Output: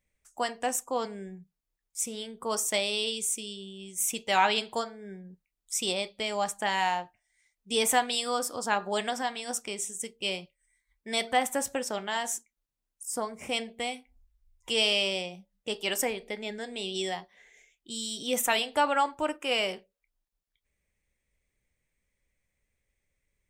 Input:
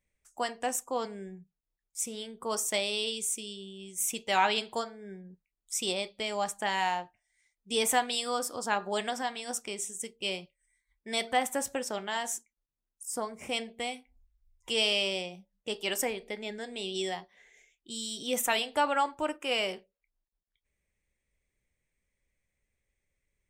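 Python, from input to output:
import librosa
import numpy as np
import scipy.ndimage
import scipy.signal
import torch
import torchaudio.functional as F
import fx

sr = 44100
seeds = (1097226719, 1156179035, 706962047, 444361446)

y = fx.peak_eq(x, sr, hz=370.0, db=-2.0, octaves=0.22)
y = y * 10.0 ** (2.0 / 20.0)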